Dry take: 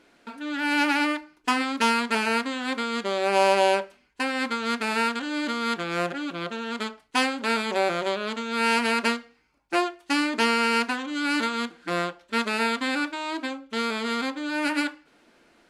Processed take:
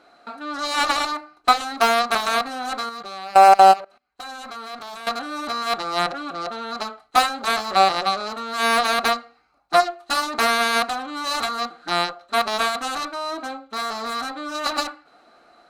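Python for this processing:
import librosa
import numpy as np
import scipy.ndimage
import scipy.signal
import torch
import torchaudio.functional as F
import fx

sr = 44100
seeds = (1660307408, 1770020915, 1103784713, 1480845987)

y = fx.cheby_harmonics(x, sr, harmonics=(3, 7), levels_db=(-22, -13), full_scale_db=-9.5)
y = fx.level_steps(y, sr, step_db=21, at=(2.89, 5.07))
y = fx.small_body(y, sr, hz=(740.0, 1200.0, 4000.0), ring_ms=20, db=18)
y = y * 10.0 ** (-1.0 / 20.0)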